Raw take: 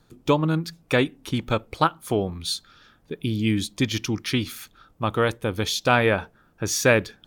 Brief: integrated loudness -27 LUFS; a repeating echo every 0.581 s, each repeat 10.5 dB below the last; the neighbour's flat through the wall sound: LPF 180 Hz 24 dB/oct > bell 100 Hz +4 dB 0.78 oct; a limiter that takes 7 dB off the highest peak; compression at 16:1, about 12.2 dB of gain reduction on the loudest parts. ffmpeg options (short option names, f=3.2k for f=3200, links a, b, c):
-af "acompressor=threshold=-25dB:ratio=16,alimiter=limit=-22dB:level=0:latency=1,lowpass=f=180:w=0.5412,lowpass=f=180:w=1.3066,equalizer=f=100:t=o:w=0.78:g=4,aecho=1:1:581|1162|1743:0.299|0.0896|0.0269,volume=11.5dB"